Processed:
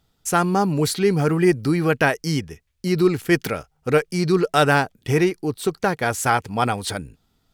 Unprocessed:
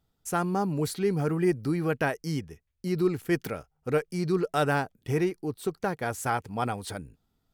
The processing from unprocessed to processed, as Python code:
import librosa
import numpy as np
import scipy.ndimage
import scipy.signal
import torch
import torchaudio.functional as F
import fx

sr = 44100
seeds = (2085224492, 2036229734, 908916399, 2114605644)

y = fx.lowpass(x, sr, hz=3300.0, slope=6)
y = fx.high_shelf(y, sr, hz=2400.0, db=12.0)
y = y * librosa.db_to_amplitude(7.5)